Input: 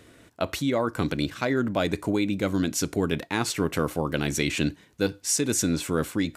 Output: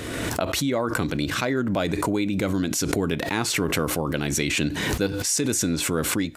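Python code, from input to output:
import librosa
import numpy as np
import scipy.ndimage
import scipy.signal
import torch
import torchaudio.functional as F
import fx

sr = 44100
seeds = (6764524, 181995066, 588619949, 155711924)

y = fx.pre_swell(x, sr, db_per_s=27.0)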